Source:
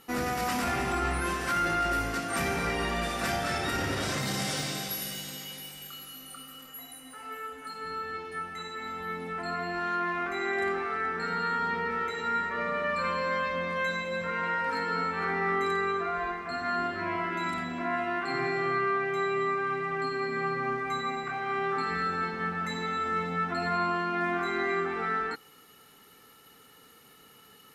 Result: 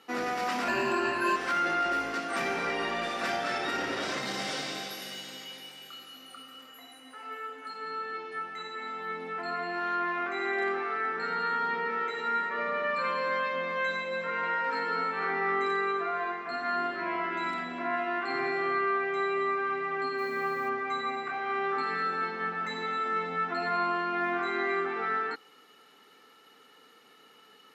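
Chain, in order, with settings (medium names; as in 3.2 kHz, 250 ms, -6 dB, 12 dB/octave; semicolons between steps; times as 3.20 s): 0.68–1.36 s: rippled EQ curve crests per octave 1.4, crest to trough 16 dB; 20.17–20.68 s: added noise violet -49 dBFS; three-band isolator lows -22 dB, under 220 Hz, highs -15 dB, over 5.9 kHz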